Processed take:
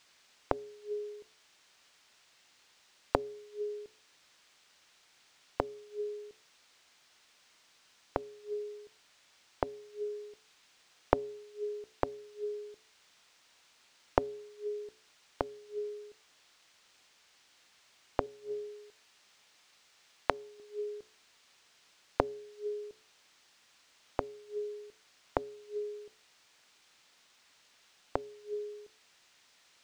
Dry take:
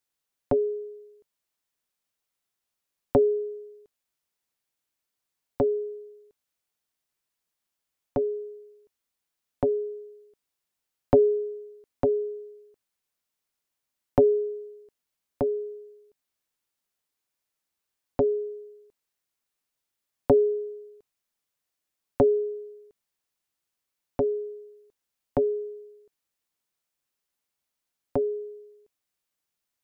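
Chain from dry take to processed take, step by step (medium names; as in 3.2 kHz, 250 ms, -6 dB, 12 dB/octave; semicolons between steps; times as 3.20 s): 18.26–20.60 s: tilt shelf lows -10 dB; de-hum 62.04 Hz, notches 39; inverted gate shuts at -30 dBFS, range -29 dB; added noise blue -60 dBFS; distance through air 140 m; trim +8.5 dB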